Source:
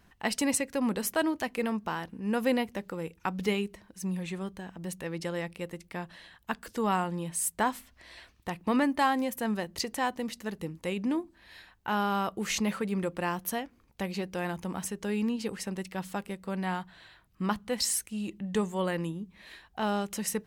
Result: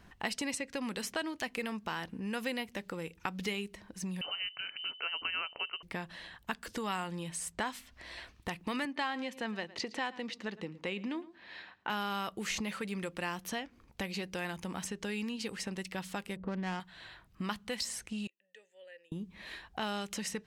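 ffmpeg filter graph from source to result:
-filter_complex "[0:a]asettb=1/sr,asplit=3[s0][s1][s2];[s0]atrim=end=4.214[s3];[s1]atrim=start=4.21:end=5.83,asetpts=PTS-STARTPTS,afade=t=in:d=0.004:c=qsin,afade=t=out:st=1.616:d=0.004:c=qsin,highpass=200,lowpass=f=2700:t=q:w=0.5098,lowpass=f=2700:t=q:w=0.6013,lowpass=f=2700:t=q:w=0.9,lowpass=f=2700:t=q:w=2.563,afreqshift=-3200[s4];[s2]atrim=start=5.826[s5];[s3][s4]acrossfade=d=0.004:c1=hsin:c2=qsin[s6];[s6][s5]acrossfade=d=0.004:c1=qsin:c2=hsin,asettb=1/sr,asplit=3[s7][s8][s9];[s7]atrim=end=8.854[s10];[s8]atrim=start=8.85:end=11.9,asetpts=PTS-STARTPTS,afade=t=in:d=0.004:c=qsin,afade=t=out:st=3.046:d=0.004:c=qsin,highpass=180,lowpass=4200,aecho=1:1:110:0.0944,atrim=end_sample=134505[s11];[s9]atrim=start=11.896[s12];[s10][s11]acrossfade=d=0.004:c1=hsin:c2=qsin[s13];[s13][s12]acrossfade=d=0.004:c1=qsin:c2=hsin,asettb=1/sr,asplit=3[s14][s15][s16];[s14]atrim=end=16.364[s17];[s15]atrim=start=16.36:end=16.8,asetpts=PTS-STARTPTS,afade=t=in:d=0.004:c=qsin,afade=t=out:st=0.436:d=0.004:c=qsin,tiltshelf=f=1400:g=8,adynamicsmooth=sensitivity=5:basefreq=1300[s18];[s16]atrim=start=16.796[s19];[s17][s18]acrossfade=d=0.004:c1=hsin:c2=qsin[s20];[s20][s19]acrossfade=d=0.004:c1=qsin:c2=hsin,asettb=1/sr,asplit=3[s21][s22][s23];[s21]atrim=end=18.274[s24];[s22]atrim=start=18.27:end=19.12,asetpts=PTS-STARTPTS,afade=t=in:d=0.004:c=qsin,afade=t=out:st=0.846:d=0.004:c=qsin,asplit=3[s25][s26][s27];[s25]bandpass=f=530:t=q:w=8,volume=1[s28];[s26]bandpass=f=1840:t=q:w=8,volume=0.501[s29];[s27]bandpass=f=2480:t=q:w=8,volume=0.355[s30];[s28][s29][s30]amix=inputs=3:normalize=0,aderivative[s31];[s23]atrim=start=19.116[s32];[s24][s31]acrossfade=d=0.004:c1=hsin:c2=qsin[s33];[s33][s32]acrossfade=d=0.004:c1=qsin:c2=hsin,acrossover=split=1800|7900[s34][s35][s36];[s34]acompressor=threshold=0.00794:ratio=4[s37];[s35]acompressor=threshold=0.01:ratio=4[s38];[s36]acompressor=threshold=0.00282:ratio=4[s39];[s37][s38][s39]amix=inputs=3:normalize=0,highshelf=f=9700:g=-9.5,volume=1.58"

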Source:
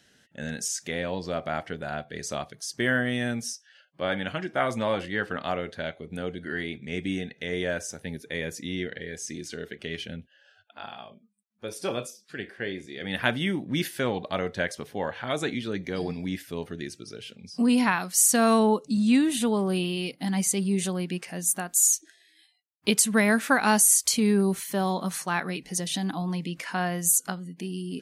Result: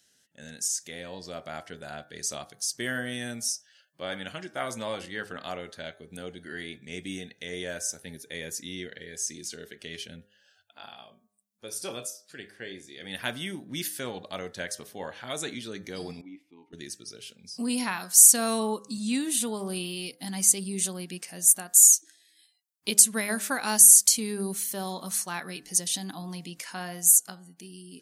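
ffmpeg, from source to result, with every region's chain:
-filter_complex "[0:a]asettb=1/sr,asplit=3[s0][s1][s2];[s0]atrim=end=16.214[s3];[s1]atrim=start=16.21:end=16.73,asetpts=PTS-STARTPTS,afade=t=in:d=0.004:c=qsin,afade=t=out:st=0.516:d=0.004:c=qsin,asplit=3[s4][s5][s6];[s4]bandpass=f=300:t=q:w=8,volume=1[s7];[s5]bandpass=f=870:t=q:w=8,volume=0.501[s8];[s6]bandpass=f=2240:t=q:w=8,volume=0.355[s9];[s7][s8][s9]amix=inputs=3:normalize=0,highshelf=f=5300:g=-5[s10];[s2]atrim=start=16.726[s11];[s3][s10]acrossfade=d=0.004:c1=hsin:c2=qsin[s12];[s12][s11]acrossfade=d=0.004:c1=qsin:c2=hsin,dynaudnorm=f=240:g=11:m=1.68,bass=f=250:g=-2,treble=f=4000:g=14,bandreject=f=102.1:t=h:w=4,bandreject=f=204.2:t=h:w=4,bandreject=f=306.3:t=h:w=4,bandreject=f=408.4:t=h:w=4,bandreject=f=510.5:t=h:w=4,bandreject=f=612.6:t=h:w=4,bandreject=f=714.7:t=h:w=4,bandreject=f=816.8:t=h:w=4,bandreject=f=918.9:t=h:w=4,bandreject=f=1021:t=h:w=4,bandreject=f=1123.1:t=h:w=4,bandreject=f=1225.2:t=h:w=4,bandreject=f=1327.3:t=h:w=4,bandreject=f=1429.4:t=h:w=4,bandreject=f=1531.5:t=h:w=4,bandreject=f=1633.6:t=h:w=4,bandreject=f=1735.7:t=h:w=4,bandreject=f=1837.8:t=h:w=4,volume=0.282"

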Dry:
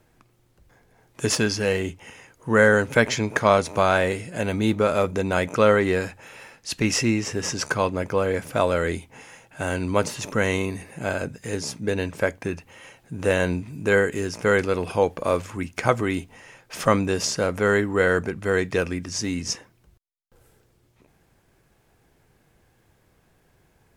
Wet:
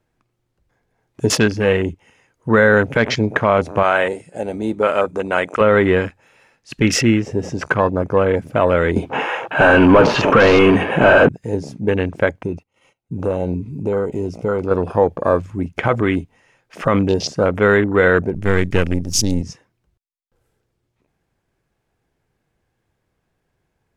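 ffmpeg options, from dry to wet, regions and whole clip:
-filter_complex "[0:a]asettb=1/sr,asplit=3[s0][s1][s2];[s0]atrim=end=3.834[s3];[s1]atrim=start=3.83:end=5.61,asetpts=PTS-STARTPTS,afade=t=in:d=0.004:c=qsin,afade=t=out:st=1.776:d=0.004:c=qsin,highpass=f=550:p=1,equalizer=f=8400:t=o:w=0.43:g=10[s4];[s2]atrim=start=5.606[s5];[s3][s4]acrossfade=d=0.004:c1=hsin:c2=qsin[s6];[s6][s5]acrossfade=d=0.004:c1=qsin:c2=hsin,asettb=1/sr,asplit=3[s7][s8][s9];[s7]atrim=end=8.964[s10];[s8]atrim=start=8.96:end=11.29,asetpts=PTS-STARTPTS,afade=t=in:d=0.004:c=qsin,afade=t=out:st=2.326:d=0.004:c=qsin,deesser=0.75,asplit=2[s11][s12];[s12]highpass=f=720:p=1,volume=35.5,asoftclip=type=tanh:threshold=0.447[s13];[s11][s13]amix=inputs=2:normalize=0,lowpass=f=1500:p=1,volume=0.501,bandreject=f=2000:w=5.4[s14];[s9]atrim=start=11.286[s15];[s10][s14]acrossfade=d=0.004:c1=hsin:c2=qsin[s16];[s16][s15]acrossfade=d=0.004:c1=qsin:c2=hsin,asettb=1/sr,asplit=3[s17][s18][s19];[s17]atrim=end=12.424[s20];[s18]atrim=start=12.42:end=14.71,asetpts=PTS-STARTPTS,afade=t=in:d=0.004:c=qsin,afade=t=out:st=2.286:d=0.004:c=qsin,agate=range=0.126:threshold=0.00447:ratio=16:release=100:detection=peak,acompressor=threshold=0.0501:ratio=2:attack=3.2:release=140:knee=1:detection=peak,asuperstop=centerf=1700:order=4:qfactor=4[s21];[s19]atrim=start=14.706[s22];[s20][s21]acrossfade=d=0.004:c1=hsin:c2=qsin[s23];[s23][s22]acrossfade=d=0.004:c1=qsin:c2=hsin,asettb=1/sr,asplit=3[s24][s25][s26];[s24]atrim=end=18.344[s27];[s25]atrim=start=18.34:end=19.42,asetpts=PTS-STARTPTS,afade=t=in:d=0.004:c=qsin,afade=t=out:st=1.076:d=0.004:c=qsin,aeval=exprs='if(lt(val(0),0),0.251*val(0),val(0))':c=same,bass=f=250:g=6,treble=f=4000:g=13[s28];[s26]atrim=start=19.416[s29];[s27][s28]acrossfade=d=0.004:c1=hsin:c2=qsin[s30];[s30][s29]acrossfade=d=0.004:c1=qsin:c2=hsin,afwtdn=0.0316,highshelf=f=8800:g=-8,alimiter=level_in=2.66:limit=0.891:release=50:level=0:latency=1,volume=0.891"

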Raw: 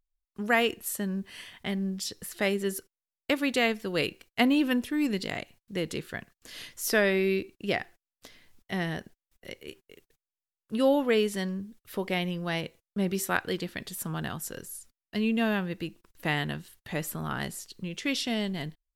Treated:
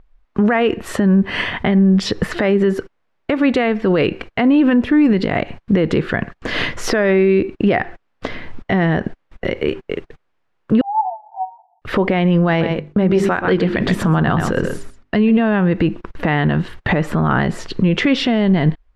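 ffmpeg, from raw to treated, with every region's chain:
-filter_complex "[0:a]asettb=1/sr,asplit=3[s0][s1][s2];[s0]atrim=end=10.814[s3];[s1]atrim=start=10.81:end=11.82,asetpts=PTS-STARTPTS,afade=t=in:d=0.004:c=qsin,afade=t=out:st=1.006:d=0.004:c=qsin,acompressor=threshold=0.0316:ratio=12:attack=3.2:release=140:knee=1:detection=peak,asuperpass=centerf=800:order=12:qfactor=3.5,asplit=2[s4][s5];[s5]adelay=16,volume=0.211[s6];[s4][s6]amix=inputs=2:normalize=0,atrim=end_sample=44541[s7];[s2]atrim=start=11.816[s8];[s3][s7]acrossfade=d=0.004:c1=hsin:c2=qsin[s9];[s9][s8]acrossfade=d=0.004:c1=qsin:c2=hsin,asettb=1/sr,asplit=3[s10][s11][s12];[s10]atrim=end=12.484[s13];[s11]atrim=start=12.48:end=15.39,asetpts=PTS-STARTPTS,afade=t=in:d=0.004:c=qsin,afade=t=out:st=2.906:d=0.004:c=qsin,bandreject=f=50:t=h:w=6,bandreject=f=100:t=h:w=6,bandreject=f=150:t=h:w=6,bandreject=f=200:t=h:w=6,bandreject=f=250:t=h:w=6,bandreject=f=300:t=h:w=6,bandreject=f=350:t=h:w=6,bandreject=f=400:t=h:w=6,aecho=1:1:127:0.224,atrim=end_sample=128331[s14];[s12]atrim=start=15.386[s15];[s13][s14]acrossfade=d=0.004:c1=hsin:c2=qsin[s16];[s16][s15]acrossfade=d=0.004:c1=qsin:c2=hsin,lowpass=1700,acompressor=threshold=0.0141:ratio=6,alimiter=level_in=63.1:limit=0.891:release=50:level=0:latency=1,volume=0.531"

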